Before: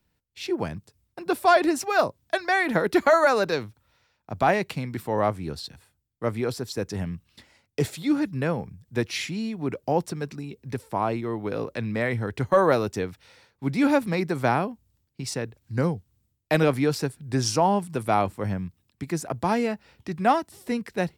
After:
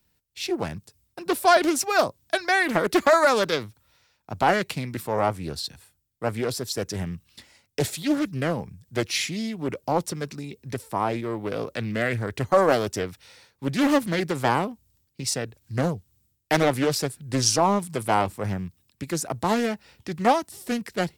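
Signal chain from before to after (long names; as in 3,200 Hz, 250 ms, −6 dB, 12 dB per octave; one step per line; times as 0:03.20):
high-shelf EQ 3,800 Hz +9.5 dB
highs frequency-modulated by the lows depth 0.49 ms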